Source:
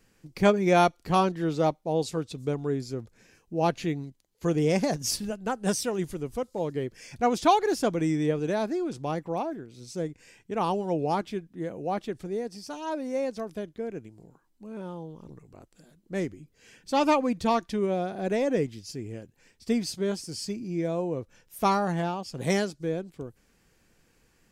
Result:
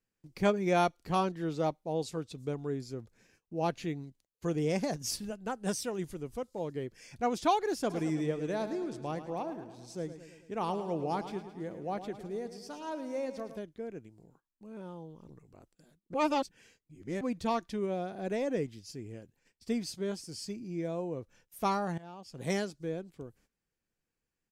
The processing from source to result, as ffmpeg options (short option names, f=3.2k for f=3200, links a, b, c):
-filter_complex "[0:a]asplit=3[a][b][c];[a]afade=t=out:st=7.89:d=0.02[d];[b]aecho=1:1:108|216|324|432|540|648|756:0.266|0.157|0.0926|0.0546|0.0322|0.019|0.0112,afade=t=in:st=7.89:d=0.02,afade=t=out:st=13.58:d=0.02[e];[c]afade=t=in:st=13.58:d=0.02[f];[d][e][f]amix=inputs=3:normalize=0,asplit=4[g][h][i][j];[g]atrim=end=16.142[k];[h]atrim=start=16.138:end=17.212,asetpts=PTS-STARTPTS,areverse[l];[i]atrim=start=17.208:end=21.98,asetpts=PTS-STARTPTS,afade=t=out:st=4.768:d=0.004:c=hsin:silence=0.0944061[m];[j]atrim=start=21.98,asetpts=PTS-STARTPTS,afade=t=in:d=0.53:silence=0.0944061[n];[k][l]acrossfade=d=0.004:c1=hsin:c2=hsin[o];[m][n]concat=n=2:v=0:a=1[p];[o][p]acrossfade=d=0.004:c1=hsin:c2=hsin,agate=range=-17dB:threshold=-58dB:ratio=16:detection=peak,volume=-6.5dB"